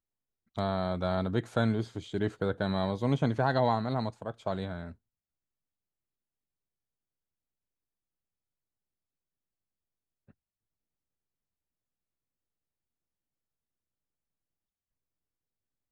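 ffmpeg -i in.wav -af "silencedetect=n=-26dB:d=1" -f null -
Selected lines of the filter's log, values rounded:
silence_start: 4.72
silence_end: 15.92 | silence_duration: 11.19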